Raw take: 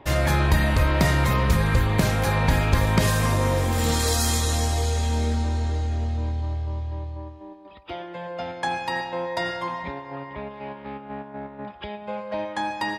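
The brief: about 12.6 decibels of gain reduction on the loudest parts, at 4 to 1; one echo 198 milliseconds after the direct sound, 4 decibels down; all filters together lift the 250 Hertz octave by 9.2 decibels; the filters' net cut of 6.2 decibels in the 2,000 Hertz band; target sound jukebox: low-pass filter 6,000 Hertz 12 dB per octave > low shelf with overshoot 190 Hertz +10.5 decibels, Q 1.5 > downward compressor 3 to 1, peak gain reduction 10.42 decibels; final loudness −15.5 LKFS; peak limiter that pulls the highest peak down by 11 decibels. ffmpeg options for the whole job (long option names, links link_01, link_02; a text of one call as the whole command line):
ffmpeg -i in.wav -af "equalizer=frequency=250:width_type=o:gain=7.5,equalizer=frequency=2000:width_type=o:gain=-7.5,acompressor=threshold=-27dB:ratio=4,alimiter=level_in=2.5dB:limit=-24dB:level=0:latency=1,volume=-2.5dB,lowpass=6000,lowshelf=frequency=190:width_type=q:width=1.5:gain=10.5,aecho=1:1:198:0.631,acompressor=threshold=-31dB:ratio=3,volume=18.5dB" out.wav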